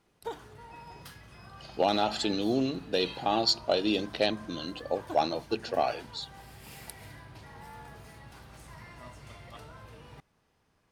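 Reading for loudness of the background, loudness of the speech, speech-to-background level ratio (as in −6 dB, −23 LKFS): −47.5 LKFS, −29.5 LKFS, 18.0 dB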